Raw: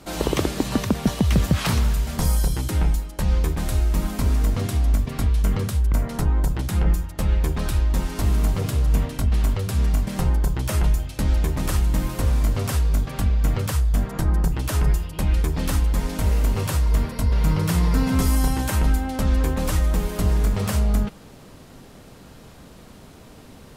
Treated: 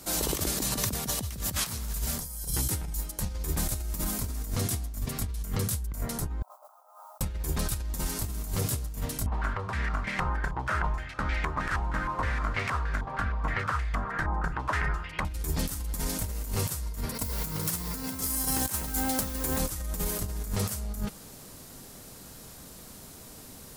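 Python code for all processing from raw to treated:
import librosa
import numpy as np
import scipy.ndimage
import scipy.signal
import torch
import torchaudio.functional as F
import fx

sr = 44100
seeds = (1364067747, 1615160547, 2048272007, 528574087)

y = fx.chain(x, sr, fx.cheby1_bandpass(low_hz=600.0, high_hz=1300.0, order=4),
    fx.over_compress(threshold_db=-51.0, ratio=-1.0),
    fx.mod_noise(seeds[0], snr_db=26), at=(6.42, 7.21))
y = fx.chain(y, sr, fx.tilt_shelf(db=-6.5, hz=850.0),
    fx.filter_held_lowpass(hz=6.4, low_hz=920.0, high_hz=2100.0), at=(9.26, 15.25))
y = fx.chain(y, sr, fx.low_shelf(hz=89.0, db=-11.0),
    fx.over_compress(threshold_db=-27.0, ratio=-0.5),
    fx.mod_noise(seeds[1], snr_db=22), at=(17.14, 19.6))
y = F.preemphasis(torch.from_numpy(y), 0.8).numpy()
y = fx.over_compress(y, sr, threshold_db=-35.0, ratio=-0.5)
y = fx.peak_eq(y, sr, hz=2900.0, db=-4.5, octaves=1.0)
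y = y * librosa.db_to_amplitude(6.5)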